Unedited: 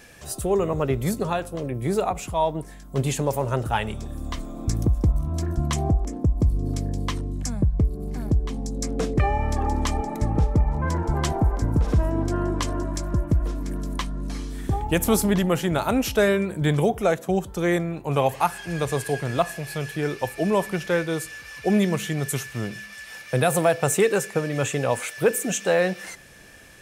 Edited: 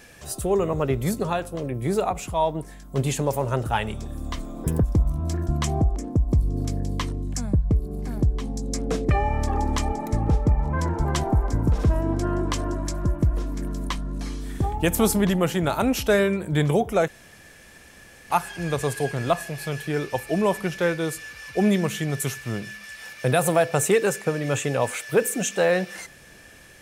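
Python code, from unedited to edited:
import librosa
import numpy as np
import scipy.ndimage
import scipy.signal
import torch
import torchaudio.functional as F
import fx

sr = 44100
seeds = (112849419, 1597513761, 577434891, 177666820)

y = fx.edit(x, sr, fx.speed_span(start_s=4.64, length_s=0.28, speed=1.46),
    fx.room_tone_fill(start_s=17.17, length_s=1.22), tone=tone)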